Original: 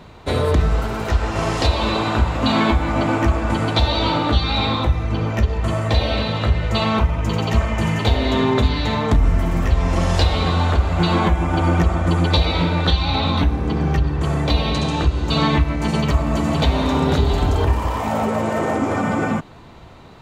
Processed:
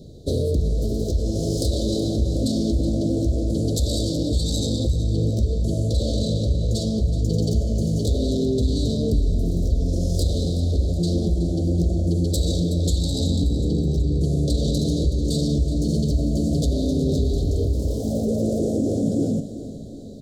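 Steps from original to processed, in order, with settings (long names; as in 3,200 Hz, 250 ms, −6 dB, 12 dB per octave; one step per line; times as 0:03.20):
phase distortion by the signal itself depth 0.15 ms
in parallel at −2 dB: compressor whose output falls as the input rises −21 dBFS, ratio −0.5
on the sum: inverse Chebyshev band-stop filter 870–2,700 Hz, stop band 40 dB
tuned comb filter 140 Hz, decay 1.7 s, mix 70%
on a send: repeating echo 373 ms, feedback 58%, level −13.5 dB
on the sum: level +4.5 dB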